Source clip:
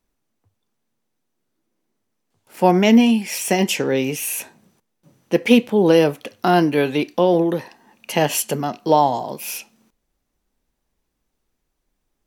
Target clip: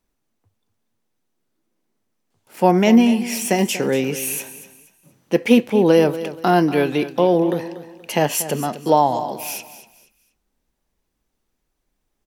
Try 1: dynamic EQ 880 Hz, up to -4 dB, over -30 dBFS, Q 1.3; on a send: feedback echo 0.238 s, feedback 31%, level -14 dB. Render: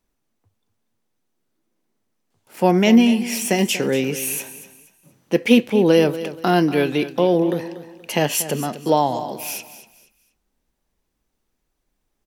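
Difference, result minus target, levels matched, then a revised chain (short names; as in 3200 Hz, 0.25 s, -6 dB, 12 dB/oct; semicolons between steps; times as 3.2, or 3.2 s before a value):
4000 Hz band +3.0 dB
dynamic EQ 3300 Hz, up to -4 dB, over -30 dBFS, Q 1.3; on a send: feedback echo 0.238 s, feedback 31%, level -14 dB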